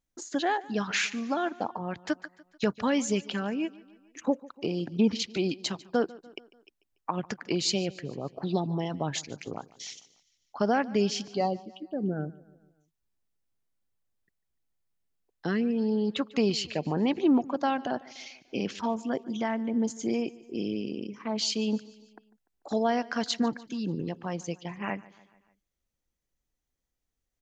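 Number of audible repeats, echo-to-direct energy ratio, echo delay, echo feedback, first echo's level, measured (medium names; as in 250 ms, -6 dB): 3, -19.5 dB, 147 ms, 54%, -21.0 dB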